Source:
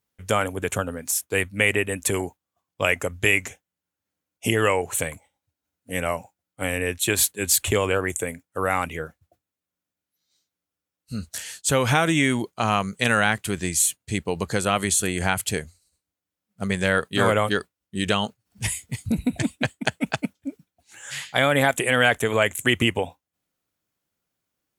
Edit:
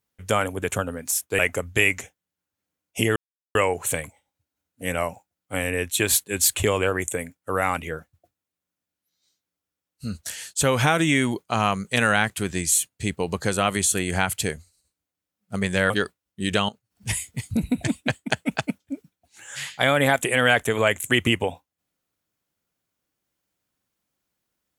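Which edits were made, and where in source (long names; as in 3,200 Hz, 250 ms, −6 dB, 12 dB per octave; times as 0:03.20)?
0:01.39–0:02.86: remove
0:04.63: splice in silence 0.39 s
0:16.98–0:17.45: remove
0:18.24–0:18.71: fade in equal-power, from −16 dB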